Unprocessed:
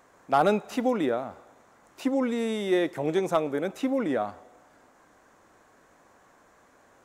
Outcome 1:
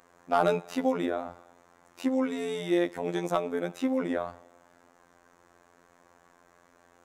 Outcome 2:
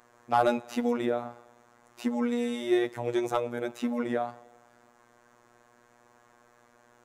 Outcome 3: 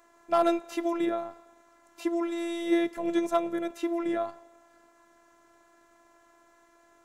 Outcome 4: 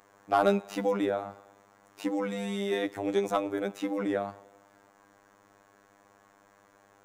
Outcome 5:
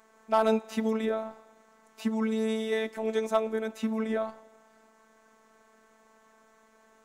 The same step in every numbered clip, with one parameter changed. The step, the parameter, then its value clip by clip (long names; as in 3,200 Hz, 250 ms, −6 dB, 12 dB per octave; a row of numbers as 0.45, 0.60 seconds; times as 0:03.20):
phases set to zero, frequency: 87, 120, 340, 100, 220 Hertz